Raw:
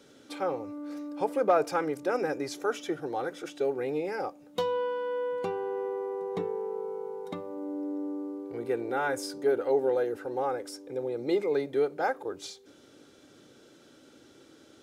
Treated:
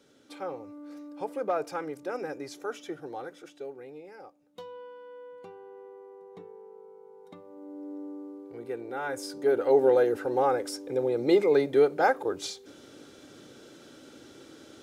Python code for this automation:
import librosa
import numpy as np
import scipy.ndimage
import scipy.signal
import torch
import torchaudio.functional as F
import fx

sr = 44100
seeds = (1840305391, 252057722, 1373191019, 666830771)

y = fx.gain(x, sr, db=fx.line((3.13, -5.5), (3.98, -14.5), (7.01, -14.5), (7.94, -5.5), (8.93, -5.5), (9.84, 5.5)))